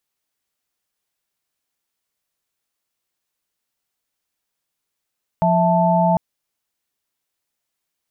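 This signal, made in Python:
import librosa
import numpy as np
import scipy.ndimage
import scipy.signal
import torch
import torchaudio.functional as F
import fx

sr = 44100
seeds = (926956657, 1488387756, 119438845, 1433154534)

y = fx.chord(sr, length_s=0.75, notes=(53, 76, 81), wave='sine', level_db=-17.5)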